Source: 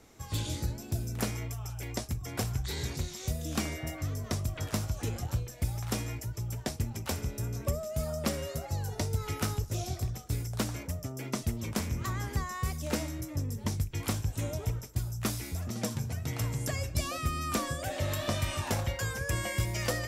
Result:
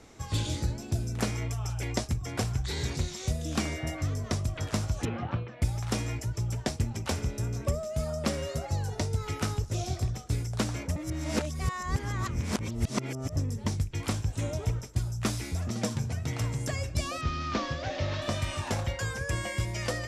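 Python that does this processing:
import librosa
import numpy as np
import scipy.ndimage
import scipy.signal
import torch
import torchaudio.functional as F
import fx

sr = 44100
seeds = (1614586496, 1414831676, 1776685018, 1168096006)

y = fx.cabinet(x, sr, low_hz=150.0, low_slope=12, high_hz=3000.0, hz=(230.0, 460.0, 1200.0), db=(3, -3, 5), at=(5.05, 5.62))
y = fx.cvsd(y, sr, bps=32000, at=(17.21, 18.22))
y = fx.edit(y, sr, fx.reverse_span(start_s=10.96, length_s=2.4), tone=tone)
y = scipy.signal.sosfilt(scipy.signal.bessel(4, 8300.0, 'lowpass', norm='mag', fs=sr, output='sos'), y)
y = fx.rider(y, sr, range_db=10, speed_s=0.5)
y = F.gain(torch.from_numpy(y), 2.5).numpy()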